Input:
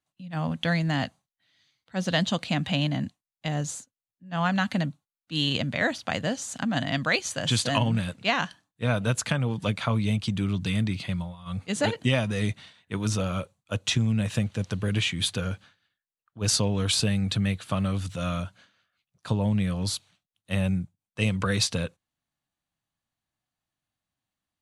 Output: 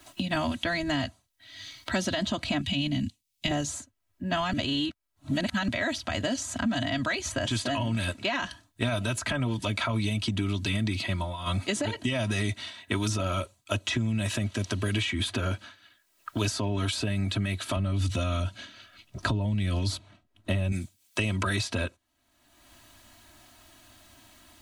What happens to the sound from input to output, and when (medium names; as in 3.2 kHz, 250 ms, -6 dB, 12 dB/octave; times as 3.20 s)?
2.61–3.51 s: high-order bell 780 Hz -14 dB 2.7 oct
4.53–5.68 s: reverse
17.76–20.72 s: tilt EQ -3.5 dB/octave
whole clip: comb 3.1 ms, depth 94%; peak limiter -19.5 dBFS; three bands compressed up and down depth 100%